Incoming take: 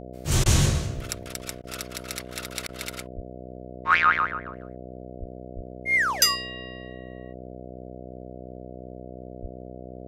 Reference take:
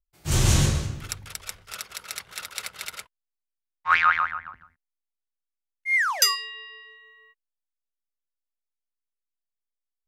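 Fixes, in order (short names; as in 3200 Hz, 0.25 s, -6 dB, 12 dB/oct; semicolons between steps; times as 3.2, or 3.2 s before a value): de-hum 62.8 Hz, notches 11; de-plosive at 0.95/3.15/5.19/5.55/9.41; interpolate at 0.44/1.62/2.67, 17 ms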